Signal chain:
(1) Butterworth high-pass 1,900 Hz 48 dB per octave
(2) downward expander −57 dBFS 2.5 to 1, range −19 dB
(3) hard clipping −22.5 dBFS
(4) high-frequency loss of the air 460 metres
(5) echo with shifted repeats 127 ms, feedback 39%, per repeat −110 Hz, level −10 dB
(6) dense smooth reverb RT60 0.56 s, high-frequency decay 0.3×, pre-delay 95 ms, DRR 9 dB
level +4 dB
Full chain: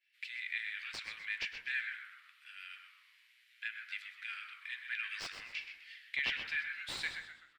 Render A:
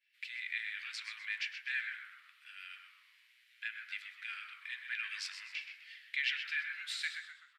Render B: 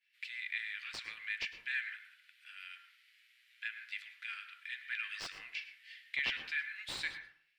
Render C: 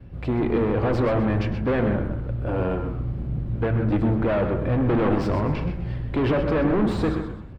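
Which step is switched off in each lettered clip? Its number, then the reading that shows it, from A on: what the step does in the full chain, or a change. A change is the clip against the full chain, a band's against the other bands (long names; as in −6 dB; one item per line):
3, distortion level −10 dB
5, echo-to-direct ratio −6.0 dB to −9.0 dB
1, 500 Hz band +39.0 dB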